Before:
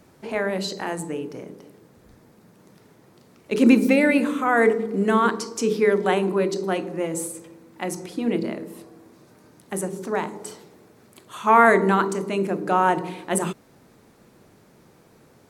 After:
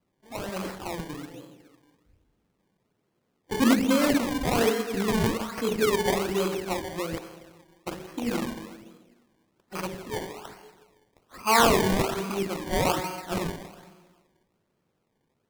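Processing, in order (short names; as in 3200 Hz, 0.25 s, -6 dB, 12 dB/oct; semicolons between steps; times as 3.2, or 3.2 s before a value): rattling part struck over -30 dBFS, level -16 dBFS; 7.18–7.87 Butterworth band-pass 5100 Hz, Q 4.9; spectral noise reduction 16 dB; reverb RT60 1.5 s, pre-delay 38 ms, DRR 6.5 dB; decimation with a swept rate 23×, swing 100% 1.2 Hz; gain -5.5 dB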